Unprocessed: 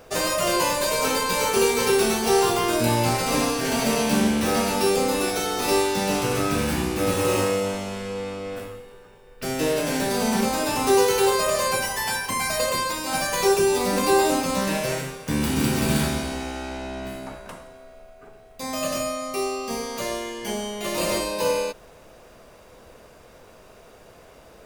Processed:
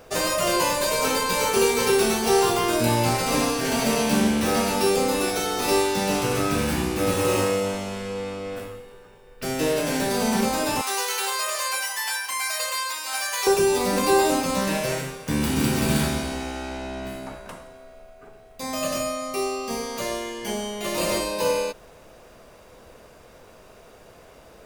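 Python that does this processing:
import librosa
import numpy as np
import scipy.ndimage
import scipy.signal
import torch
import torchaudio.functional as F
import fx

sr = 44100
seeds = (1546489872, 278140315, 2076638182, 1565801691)

y = fx.highpass(x, sr, hz=1100.0, slope=12, at=(10.81, 13.47))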